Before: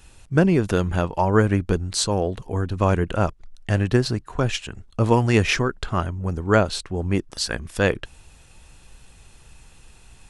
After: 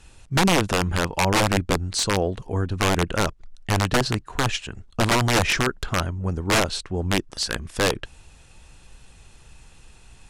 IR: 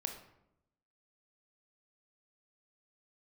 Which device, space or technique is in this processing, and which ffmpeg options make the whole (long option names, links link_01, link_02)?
overflowing digital effects unit: -af "aeval=exprs='(mod(3.98*val(0)+1,2)-1)/3.98':channel_layout=same,lowpass=10000"